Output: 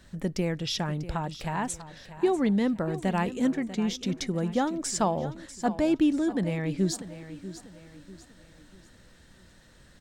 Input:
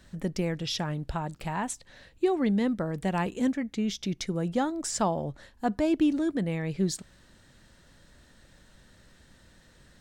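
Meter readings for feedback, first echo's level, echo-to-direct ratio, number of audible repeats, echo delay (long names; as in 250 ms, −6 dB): 39%, −14.0 dB, −13.5 dB, 3, 643 ms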